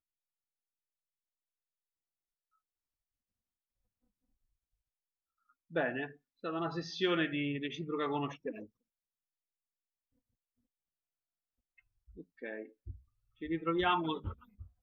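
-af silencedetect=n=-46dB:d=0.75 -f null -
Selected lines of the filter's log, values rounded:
silence_start: 0.00
silence_end: 5.73 | silence_duration: 5.73
silence_start: 8.65
silence_end: 12.18 | silence_duration: 3.53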